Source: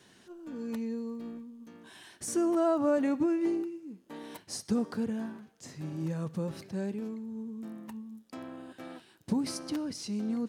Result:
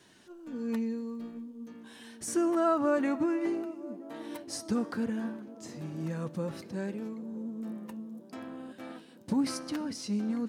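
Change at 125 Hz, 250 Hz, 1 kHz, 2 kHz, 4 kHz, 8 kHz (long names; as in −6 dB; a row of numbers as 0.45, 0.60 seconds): −1.0, 0.0, +3.0, +4.0, 0.0, 0.0 decibels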